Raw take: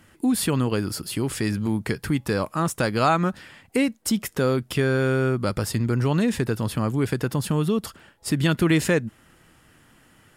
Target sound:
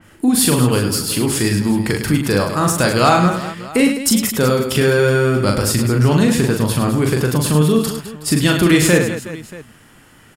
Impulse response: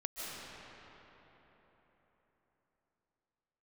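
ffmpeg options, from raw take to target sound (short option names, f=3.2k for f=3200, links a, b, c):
-af "aecho=1:1:40|104|206.4|370.2|632.4:0.631|0.398|0.251|0.158|0.1,acontrast=30,adynamicequalizer=threshold=0.0224:dfrequency=3600:dqfactor=0.7:tfrequency=3600:tqfactor=0.7:attack=5:release=100:ratio=0.375:range=2.5:mode=boostabove:tftype=highshelf,volume=1dB"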